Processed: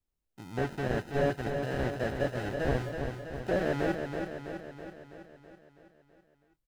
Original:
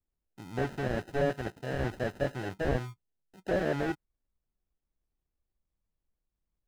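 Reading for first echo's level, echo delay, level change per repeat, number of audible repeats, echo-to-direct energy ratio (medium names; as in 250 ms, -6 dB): -6.0 dB, 327 ms, -4.5 dB, 7, -4.0 dB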